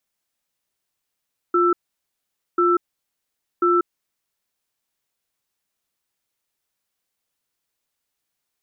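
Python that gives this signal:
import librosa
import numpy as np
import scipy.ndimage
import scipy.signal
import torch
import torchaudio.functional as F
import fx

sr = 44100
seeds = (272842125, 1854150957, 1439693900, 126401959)

y = fx.cadence(sr, length_s=2.32, low_hz=351.0, high_hz=1330.0, on_s=0.19, off_s=0.85, level_db=-17.0)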